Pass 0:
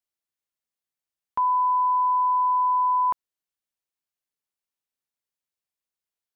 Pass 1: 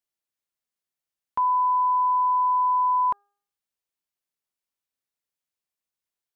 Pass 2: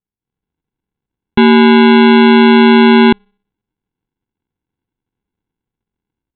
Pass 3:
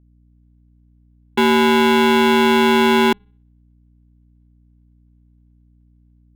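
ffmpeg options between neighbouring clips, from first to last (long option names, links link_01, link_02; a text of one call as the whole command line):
ffmpeg -i in.wav -af "bandreject=frequency=405:width_type=h:width=4,bandreject=frequency=810:width_type=h:width=4,bandreject=frequency=1215:width_type=h:width=4,bandreject=frequency=1620:width_type=h:width=4" out.wav
ffmpeg -i in.wav -af "dynaudnorm=framelen=180:gausssize=3:maxgain=12dB,aresample=8000,acrusher=samples=13:mix=1:aa=0.000001,aresample=44100,volume=3.5dB" out.wav
ffmpeg -i in.wav -filter_complex "[0:a]acrossover=split=230[link_01][link_02];[link_01]aeval=exprs='(mod(10*val(0)+1,2)-1)/10':channel_layout=same[link_03];[link_03][link_02]amix=inputs=2:normalize=0,aeval=exprs='val(0)+0.00447*(sin(2*PI*60*n/s)+sin(2*PI*2*60*n/s)/2+sin(2*PI*3*60*n/s)/3+sin(2*PI*4*60*n/s)/4+sin(2*PI*5*60*n/s)/5)':channel_layout=same,volume=-5dB" out.wav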